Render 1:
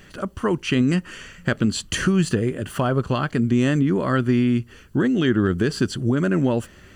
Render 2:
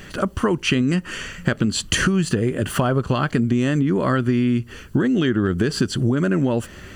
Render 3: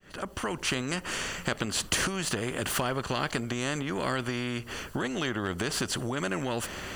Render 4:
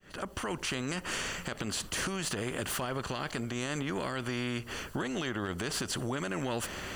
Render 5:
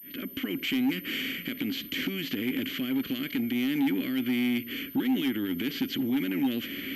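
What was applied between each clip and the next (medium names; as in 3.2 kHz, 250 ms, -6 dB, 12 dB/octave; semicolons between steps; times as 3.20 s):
compression, threshold -24 dBFS, peak gain reduction 9.5 dB; trim +8 dB
fade-in on the opening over 0.72 s; peaking EQ 680 Hz +5.5 dB 2.4 oct; spectrum-flattening compressor 2:1; trim -8 dB
peak limiter -22 dBFS, peak gain reduction 9.5 dB; trim -1.5 dB
vowel filter i; sine folder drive 4 dB, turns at -30.5 dBFS; class-D stage that switches slowly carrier 13 kHz; trim +9 dB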